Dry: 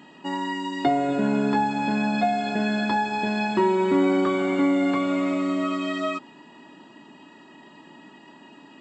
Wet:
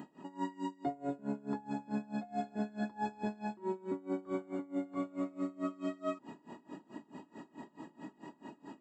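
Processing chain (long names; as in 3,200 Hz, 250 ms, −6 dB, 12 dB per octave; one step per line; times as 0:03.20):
parametric band 3,000 Hz −14 dB 1.9 octaves
reversed playback
downward compressor 12 to 1, threshold −35 dBFS, peak gain reduction 18 dB
reversed playback
tremolo with a sine in dB 4.6 Hz, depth 24 dB
level +5 dB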